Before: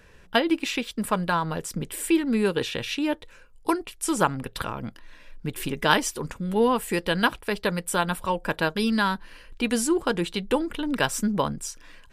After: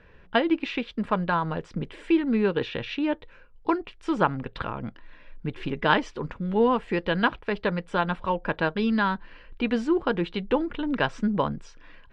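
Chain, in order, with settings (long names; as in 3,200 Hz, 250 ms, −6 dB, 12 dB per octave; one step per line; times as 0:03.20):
Bessel low-pass filter 2,600 Hz, order 4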